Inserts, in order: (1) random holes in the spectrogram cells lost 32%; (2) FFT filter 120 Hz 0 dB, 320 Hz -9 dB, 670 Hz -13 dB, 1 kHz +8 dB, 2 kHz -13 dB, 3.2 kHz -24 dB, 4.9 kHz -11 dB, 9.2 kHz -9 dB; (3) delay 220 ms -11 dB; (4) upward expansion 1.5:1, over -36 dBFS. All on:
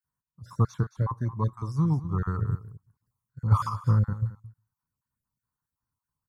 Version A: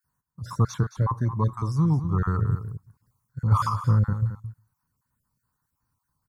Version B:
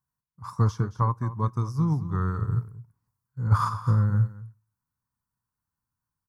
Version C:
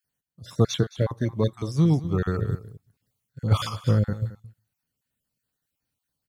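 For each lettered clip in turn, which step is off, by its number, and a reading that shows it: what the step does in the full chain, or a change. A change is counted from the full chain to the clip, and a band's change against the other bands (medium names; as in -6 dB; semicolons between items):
4, crest factor change -2.5 dB; 1, 1 kHz band +2.5 dB; 2, momentary loudness spread change +3 LU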